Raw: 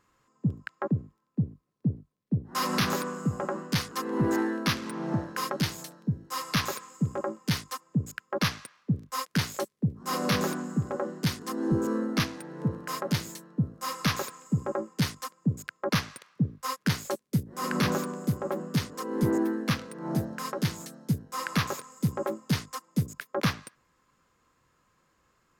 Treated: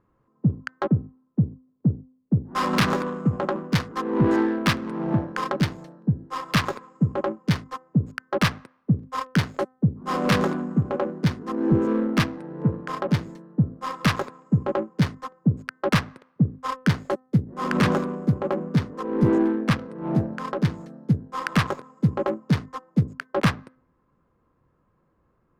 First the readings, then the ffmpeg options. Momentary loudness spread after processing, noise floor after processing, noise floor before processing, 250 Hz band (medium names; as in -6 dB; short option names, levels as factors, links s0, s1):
6 LU, -68 dBFS, -71 dBFS, +6.0 dB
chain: -af "aemphasis=mode=production:type=50kf,bandreject=f=257.2:t=h:w=4,bandreject=f=514.4:t=h:w=4,bandreject=f=771.6:t=h:w=4,bandreject=f=1028.8:t=h:w=4,bandreject=f=1286:t=h:w=4,bandreject=f=1543.2:t=h:w=4,bandreject=f=1800.4:t=h:w=4,bandreject=f=2057.6:t=h:w=4,adynamicsmooth=sensitivity=1.5:basefreq=820,volume=2.11"